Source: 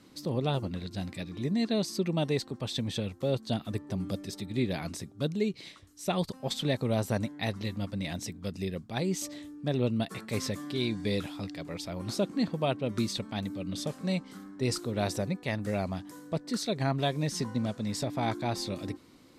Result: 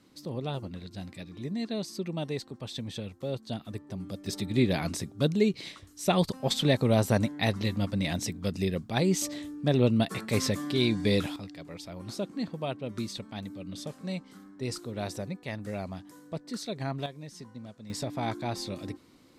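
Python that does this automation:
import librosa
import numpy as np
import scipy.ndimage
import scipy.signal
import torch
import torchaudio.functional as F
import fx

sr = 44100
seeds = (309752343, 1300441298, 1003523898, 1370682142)

y = fx.gain(x, sr, db=fx.steps((0.0, -4.5), (4.26, 5.0), (11.36, -4.5), (17.06, -13.0), (17.9, -1.5)))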